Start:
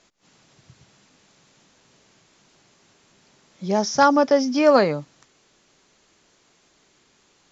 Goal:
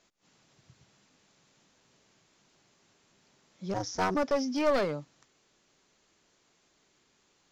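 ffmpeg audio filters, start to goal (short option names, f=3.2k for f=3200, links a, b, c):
-filter_complex "[0:a]asplit=3[a][b][c];[a]afade=t=out:st=3.73:d=0.02[d];[b]aeval=exprs='val(0)*sin(2*PI*94*n/s)':c=same,afade=t=in:st=3.73:d=0.02,afade=t=out:st=4.14:d=0.02[e];[c]afade=t=in:st=4.14:d=0.02[f];[d][e][f]amix=inputs=3:normalize=0,aeval=exprs='clip(val(0),-1,0.119)':c=same,volume=-8.5dB"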